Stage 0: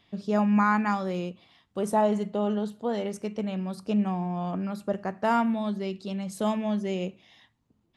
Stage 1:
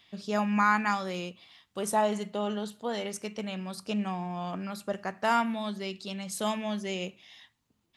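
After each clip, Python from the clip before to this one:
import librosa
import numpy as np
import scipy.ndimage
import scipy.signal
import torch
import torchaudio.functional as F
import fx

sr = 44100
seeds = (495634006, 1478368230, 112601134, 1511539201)

y = fx.tilt_shelf(x, sr, db=-6.5, hz=1100.0)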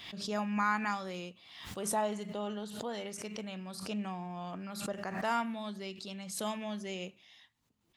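y = fx.pre_swell(x, sr, db_per_s=58.0)
y = F.gain(torch.from_numpy(y), -6.5).numpy()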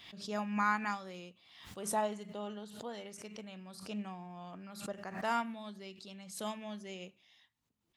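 y = fx.upward_expand(x, sr, threshold_db=-41.0, expansion=1.5)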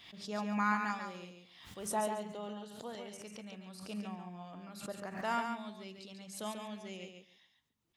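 y = fx.echo_feedback(x, sr, ms=140, feedback_pct=16, wet_db=-6.0)
y = F.gain(torch.from_numpy(y), -1.5).numpy()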